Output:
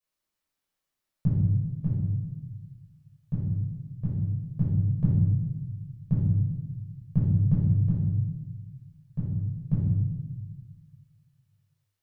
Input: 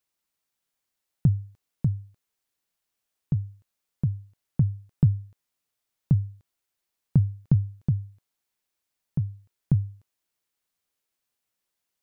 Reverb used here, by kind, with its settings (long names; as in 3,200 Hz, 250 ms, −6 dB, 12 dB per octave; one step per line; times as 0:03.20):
rectangular room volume 630 cubic metres, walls mixed, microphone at 5.7 metres
level −12.5 dB